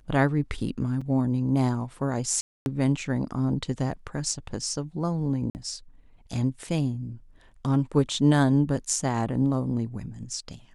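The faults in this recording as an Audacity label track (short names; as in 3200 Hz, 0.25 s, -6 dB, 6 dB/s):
1.010000	1.010000	gap 4.8 ms
2.410000	2.660000	gap 0.251 s
5.500000	5.550000	gap 49 ms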